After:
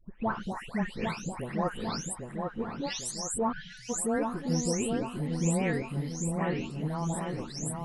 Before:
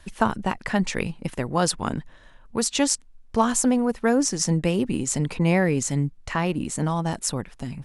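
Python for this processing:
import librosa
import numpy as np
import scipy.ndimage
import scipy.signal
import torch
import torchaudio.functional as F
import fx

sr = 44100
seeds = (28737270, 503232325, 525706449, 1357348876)

y = fx.spec_delay(x, sr, highs='late', ms=432)
y = fx.echo_wet_lowpass(y, sr, ms=799, feedback_pct=49, hz=1500.0, wet_db=-4)
y = fx.spec_erase(y, sr, start_s=3.52, length_s=0.37, low_hz=210.0, high_hz=1400.0)
y = y * 10.0 ** (-8.0 / 20.0)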